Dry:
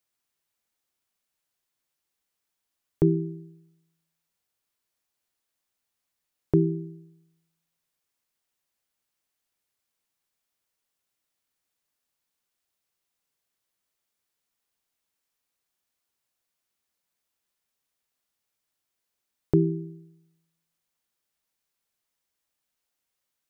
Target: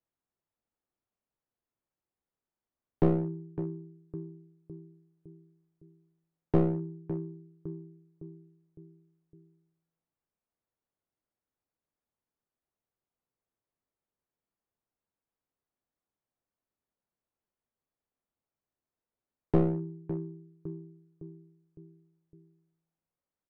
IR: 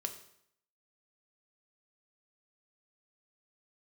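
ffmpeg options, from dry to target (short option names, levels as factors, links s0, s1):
-filter_complex "[0:a]asplit=2[s0][s1];[s1]adelay=559,lowpass=f=830:p=1,volume=0.251,asplit=2[s2][s3];[s3]adelay=559,lowpass=f=830:p=1,volume=0.52,asplit=2[s4][s5];[s5]adelay=559,lowpass=f=830:p=1,volume=0.52,asplit=2[s6][s7];[s7]adelay=559,lowpass=f=830:p=1,volume=0.52,asplit=2[s8][s9];[s9]adelay=559,lowpass=f=830:p=1,volume=0.52[s10];[s0][s2][s4][s6][s8][s10]amix=inputs=6:normalize=0,aeval=exprs='clip(val(0),-1,0.0355)':c=same,adynamicsmooth=sensitivity=2.5:basefreq=1100"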